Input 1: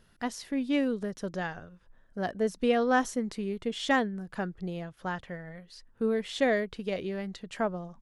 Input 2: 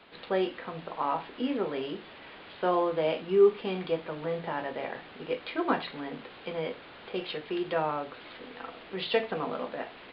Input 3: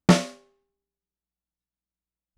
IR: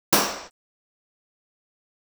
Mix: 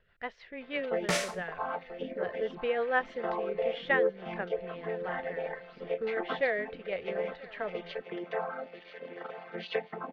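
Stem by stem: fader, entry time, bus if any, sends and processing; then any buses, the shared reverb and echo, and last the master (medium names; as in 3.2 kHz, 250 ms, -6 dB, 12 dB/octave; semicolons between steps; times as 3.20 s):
-5.5 dB, 0.00 s, no send, echo send -21.5 dB, low-pass 3.5 kHz 24 dB/octave; rotary cabinet horn 6.3 Hz
+0.5 dB, 0.60 s, no send, echo send -12.5 dB, vocoder on a held chord major triad, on F3; reverb removal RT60 1.1 s; compression 2:1, threshold -37 dBFS, peak gain reduction 12 dB
+1.5 dB, 1.00 s, no send, no echo send, treble shelf 6.1 kHz +11.5 dB; peak limiter -14.5 dBFS, peak gain reduction 9 dB; auto duck -12 dB, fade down 2.00 s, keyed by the first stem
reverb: none
echo: feedback delay 985 ms, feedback 28%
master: graphic EQ 250/500/2000 Hz -12/+7/+9 dB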